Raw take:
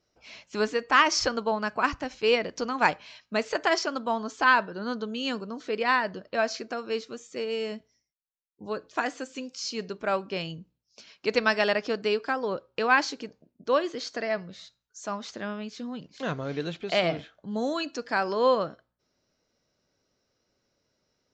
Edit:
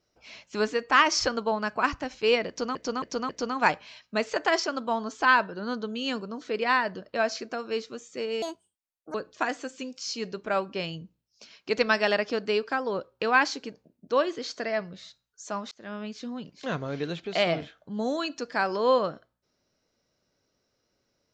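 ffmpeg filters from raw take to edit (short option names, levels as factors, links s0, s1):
-filter_complex "[0:a]asplit=7[s0][s1][s2][s3][s4][s5][s6];[s0]atrim=end=2.752[s7];[s1]atrim=start=2.478:end=2.752[s8];[s2]atrim=start=2.478:end=2.752[s9];[s3]atrim=start=2.478:end=7.614[s10];[s4]atrim=start=7.61:end=8.71,asetpts=PTS-STARTPTS,asetrate=67032,aresample=44100,atrim=end_sample=31914,asetpts=PTS-STARTPTS[s11];[s5]atrim=start=8.706:end=15.28,asetpts=PTS-STARTPTS,afade=t=out:st=6.57:d=0.004:c=hsin[s12];[s6]atrim=start=15.28,asetpts=PTS-STARTPTS,afade=t=in:d=0.31[s13];[s7][s8]acrossfade=d=0.004:c1=hsin:c2=hsin[s14];[s14][s9]acrossfade=d=0.004:c1=hsin:c2=hsin[s15];[s15][s10]acrossfade=d=0.004:c1=hsin:c2=hsin[s16];[s16][s11]acrossfade=d=0.004:c1=hsin:c2=hsin[s17];[s12][s13]concat=n=2:v=0:a=1[s18];[s17][s18]acrossfade=d=0.004:c1=hsin:c2=hsin"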